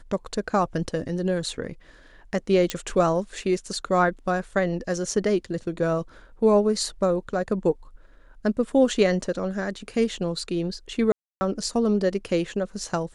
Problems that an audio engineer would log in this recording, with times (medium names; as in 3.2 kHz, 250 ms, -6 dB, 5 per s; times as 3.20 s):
2.70 s: pop -9 dBFS
11.12–11.41 s: dropout 290 ms